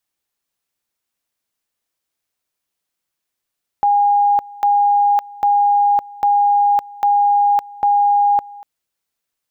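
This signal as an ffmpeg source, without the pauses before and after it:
ffmpeg -f lavfi -i "aevalsrc='pow(10,(-10.5-22*gte(mod(t,0.8),0.56))/20)*sin(2*PI*816*t)':duration=4.8:sample_rate=44100" out.wav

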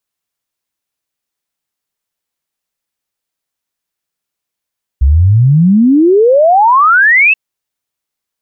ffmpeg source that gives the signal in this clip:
ffmpeg -f lavfi -i "aevalsrc='0.631*clip(min(t,2.33-t)/0.01,0,1)*sin(2*PI*63*2.33/log(2700/63)*(exp(log(2700/63)*t/2.33)-1))':duration=2.33:sample_rate=44100" out.wav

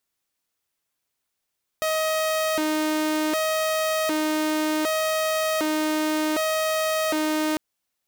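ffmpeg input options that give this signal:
ffmpeg -f lavfi -i "aevalsrc='0.112*(2*mod((470*t+161/0.66*(0.5-abs(mod(0.66*t,1)-0.5))),1)-1)':duration=5.75:sample_rate=44100" out.wav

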